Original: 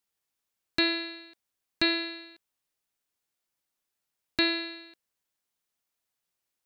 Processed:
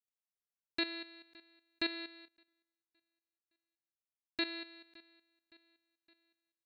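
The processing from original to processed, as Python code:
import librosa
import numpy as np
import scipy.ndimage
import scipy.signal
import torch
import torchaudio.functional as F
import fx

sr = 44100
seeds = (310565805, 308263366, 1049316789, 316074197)

y = fx.level_steps(x, sr, step_db=12)
y = fx.echo_feedback(y, sr, ms=565, feedback_pct=52, wet_db=-24)
y = fx.upward_expand(y, sr, threshold_db=-57.0, expansion=1.5, at=(2.28, 4.45))
y = y * librosa.db_to_amplitude(-7.5)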